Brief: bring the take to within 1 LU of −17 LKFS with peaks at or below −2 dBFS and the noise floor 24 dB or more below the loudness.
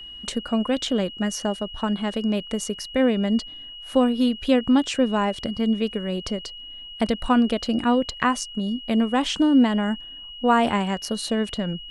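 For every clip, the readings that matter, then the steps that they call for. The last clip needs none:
interfering tone 2,900 Hz; level of the tone −37 dBFS; integrated loudness −23.5 LKFS; sample peak −5.5 dBFS; target loudness −17.0 LKFS
→ notch filter 2,900 Hz, Q 30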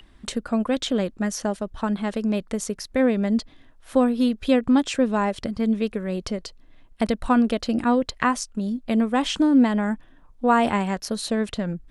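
interfering tone none found; integrated loudness −23.5 LKFS; sample peak −5.5 dBFS; target loudness −17.0 LKFS
→ level +6.5 dB
brickwall limiter −2 dBFS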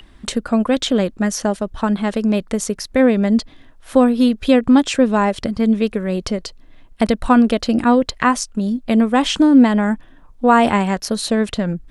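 integrated loudness −17.0 LKFS; sample peak −2.0 dBFS; background noise floor −46 dBFS

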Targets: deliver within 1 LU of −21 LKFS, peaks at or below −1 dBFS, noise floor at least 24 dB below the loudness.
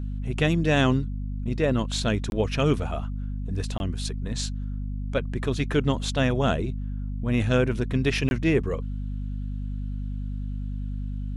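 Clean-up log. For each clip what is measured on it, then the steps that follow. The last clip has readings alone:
number of dropouts 3; longest dropout 21 ms; mains hum 50 Hz; hum harmonics up to 250 Hz; level of the hum −28 dBFS; integrated loudness −27.0 LKFS; sample peak −9.0 dBFS; target loudness −21.0 LKFS
→ repair the gap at 0:02.30/0:03.78/0:08.29, 21 ms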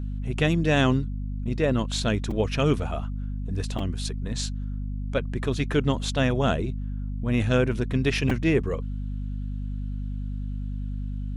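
number of dropouts 0; mains hum 50 Hz; hum harmonics up to 250 Hz; level of the hum −28 dBFS
→ mains-hum notches 50/100/150/200/250 Hz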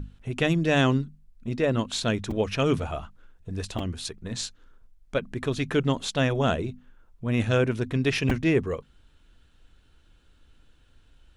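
mains hum none found; integrated loudness −27.0 LKFS; sample peak −10.0 dBFS; target loudness −21.0 LKFS
→ level +6 dB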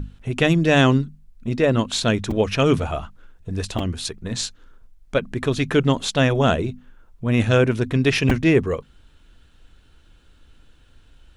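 integrated loudness −21.0 LKFS; sample peak −4.0 dBFS; background noise floor −54 dBFS

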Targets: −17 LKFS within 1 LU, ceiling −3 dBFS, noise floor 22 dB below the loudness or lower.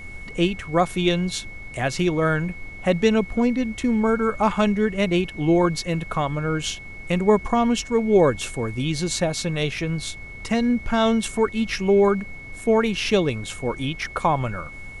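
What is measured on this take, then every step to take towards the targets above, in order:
interfering tone 2,200 Hz; level of the tone −38 dBFS; background noise floor −38 dBFS; target noise floor −45 dBFS; integrated loudness −22.5 LKFS; sample peak −6.0 dBFS; target loudness −17.0 LKFS
→ notch filter 2,200 Hz, Q 30
noise reduction from a noise print 7 dB
level +5.5 dB
brickwall limiter −3 dBFS

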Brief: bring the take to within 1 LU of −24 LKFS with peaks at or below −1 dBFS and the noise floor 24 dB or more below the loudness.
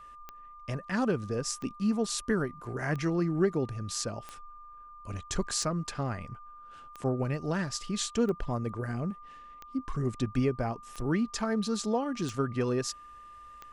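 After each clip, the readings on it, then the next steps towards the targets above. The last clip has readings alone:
number of clicks 11; interfering tone 1,200 Hz; level of the tone −47 dBFS; integrated loudness −32.0 LKFS; sample peak −15.0 dBFS; target loudness −24.0 LKFS
→ click removal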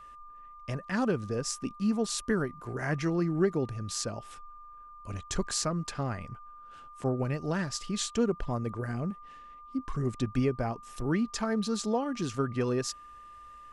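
number of clicks 0; interfering tone 1,200 Hz; level of the tone −47 dBFS
→ notch filter 1,200 Hz, Q 30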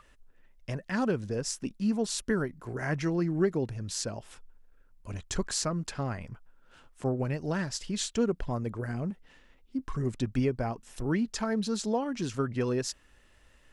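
interfering tone none found; integrated loudness −32.0 LKFS; sample peak −14.5 dBFS; target loudness −24.0 LKFS
→ level +8 dB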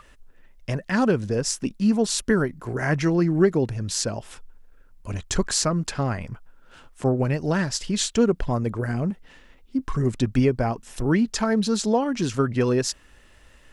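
integrated loudness −24.0 LKFS; sample peak −6.5 dBFS; background noise floor −53 dBFS

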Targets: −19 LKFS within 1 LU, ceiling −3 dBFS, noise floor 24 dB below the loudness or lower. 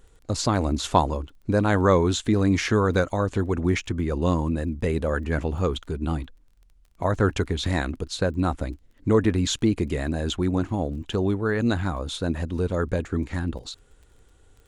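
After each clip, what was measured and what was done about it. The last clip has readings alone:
crackle rate 19 per second; integrated loudness −25.0 LKFS; sample peak −3.5 dBFS; target loudness −19.0 LKFS
→ click removal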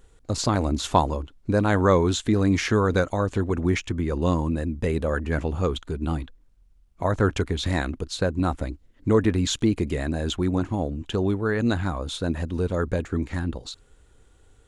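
crackle rate 0 per second; integrated loudness −25.0 LKFS; sample peak −4.0 dBFS; target loudness −19.0 LKFS
→ level +6 dB
brickwall limiter −3 dBFS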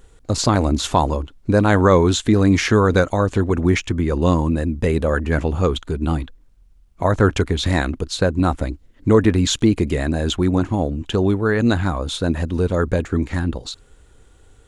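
integrated loudness −19.0 LKFS; sample peak −3.0 dBFS; background noise floor −51 dBFS

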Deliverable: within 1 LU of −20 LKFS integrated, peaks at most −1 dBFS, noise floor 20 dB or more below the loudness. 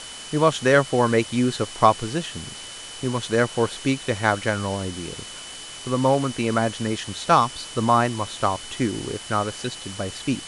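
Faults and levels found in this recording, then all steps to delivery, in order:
interfering tone 3,000 Hz; level of the tone −40 dBFS; background noise floor −38 dBFS; target noise floor −43 dBFS; integrated loudness −23.0 LKFS; sample peak −1.0 dBFS; target loudness −20.0 LKFS
→ notch filter 3,000 Hz, Q 30
broadband denoise 6 dB, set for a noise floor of −38 dBFS
level +3 dB
brickwall limiter −1 dBFS

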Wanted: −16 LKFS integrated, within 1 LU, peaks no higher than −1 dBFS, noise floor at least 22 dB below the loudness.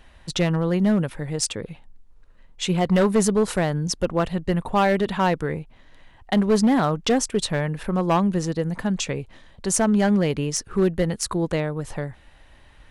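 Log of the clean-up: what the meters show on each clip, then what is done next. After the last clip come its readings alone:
share of clipped samples 1.3%; peaks flattened at −13.0 dBFS; integrated loudness −22.5 LKFS; sample peak −13.0 dBFS; target loudness −16.0 LKFS
→ clipped peaks rebuilt −13 dBFS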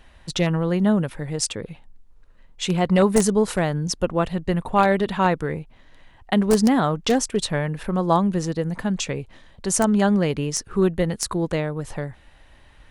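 share of clipped samples 0.0%; integrated loudness −22.0 LKFS; sample peak −4.0 dBFS; target loudness −16.0 LKFS
→ level +6 dB
brickwall limiter −1 dBFS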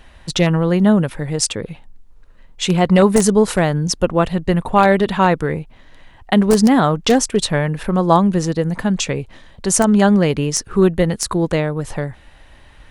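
integrated loudness −16.5 LKFS; sample peak −1.0 dBFS; background noise floor −45 dBFS

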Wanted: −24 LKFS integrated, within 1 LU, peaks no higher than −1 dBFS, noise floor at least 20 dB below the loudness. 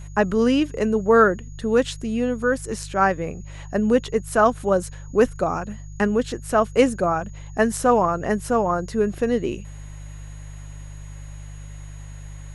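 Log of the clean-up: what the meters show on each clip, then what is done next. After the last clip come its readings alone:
mains hum 50 Hz; hum harmonics up to 150 Hz; level of the hum −34 dBFS; interfering tone 6,700 Hz; level of the tone −52 dBFS; integrated loudness −21.5 LKFS; sample peak −3.5 dBFS; target loudness −24.0 LKFS
→ hum removal 50 Hz, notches 3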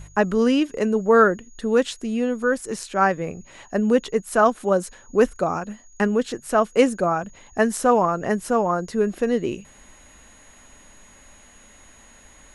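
mains hum none found; interfering tone 6,700 Hz; level of the tone −52 dBFS
→ notch filter 6,700 Hz, Q 30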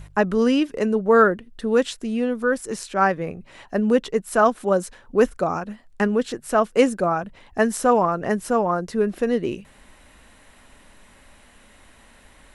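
interfering tone none found; integrated loudness −21.5 LKFS; sample peak −4.0 dBFS; target loudness −24.0 LKFS
→ level −2.5 dB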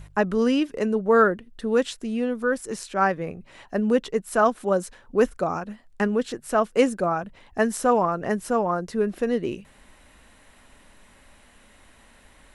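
integrated loudness −24.0 LKFS; sample peak −6.5 dBFS; background noise floor −55 dBFS

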